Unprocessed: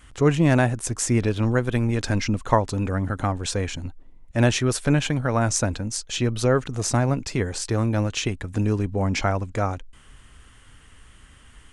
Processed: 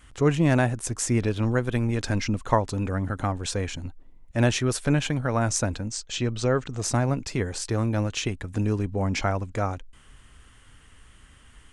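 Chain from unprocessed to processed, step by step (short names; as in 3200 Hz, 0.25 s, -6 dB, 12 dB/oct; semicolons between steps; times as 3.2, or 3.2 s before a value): 5.89–6.83 elliptic low-pass 8300 Hz, stop band 40 dB; gain -2.5 dB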